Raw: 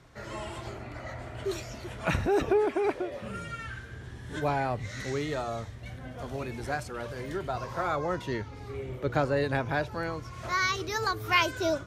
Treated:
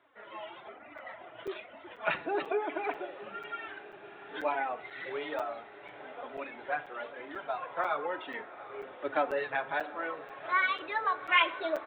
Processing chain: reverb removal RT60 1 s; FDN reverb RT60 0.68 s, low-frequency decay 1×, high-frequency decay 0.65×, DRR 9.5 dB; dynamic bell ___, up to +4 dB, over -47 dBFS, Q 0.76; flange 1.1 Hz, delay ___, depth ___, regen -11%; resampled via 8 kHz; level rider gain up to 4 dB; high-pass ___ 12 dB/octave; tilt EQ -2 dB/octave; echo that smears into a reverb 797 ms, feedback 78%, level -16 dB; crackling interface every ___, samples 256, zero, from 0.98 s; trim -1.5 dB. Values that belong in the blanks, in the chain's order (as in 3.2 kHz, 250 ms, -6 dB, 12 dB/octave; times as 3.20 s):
3 kHz, 2.9 ms, 3.4 ms, 630 Hz, 0.49 s